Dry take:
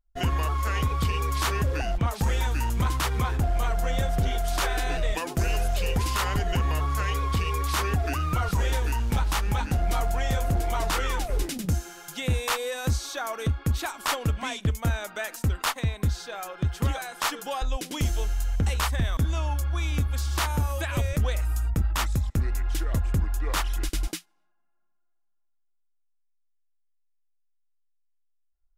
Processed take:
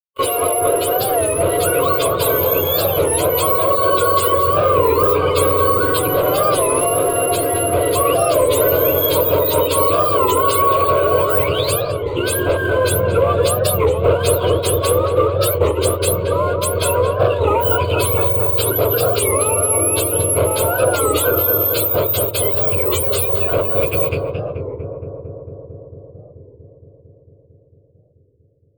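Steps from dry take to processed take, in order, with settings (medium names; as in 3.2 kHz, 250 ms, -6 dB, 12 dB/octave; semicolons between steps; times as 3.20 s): spectrum inverted on a logarithmic axis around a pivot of 880 Hz; expander -32 dBFS; graphic EQ 125/500/1000/4000 Hz -11/+11/+5/+4 dB; waveshaping leveller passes 3; compression, threshold -16 dBFS, peak gain reduction 5.5 dB; static phaser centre 1.2 kHz, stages 8; on a send: filtered feedback delay 225 ms, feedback 83%, low-pass 1.3 kHz, level -3 dB; on the sum: warped record 33 1/3 rpm, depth 160 cents; trim +4 dB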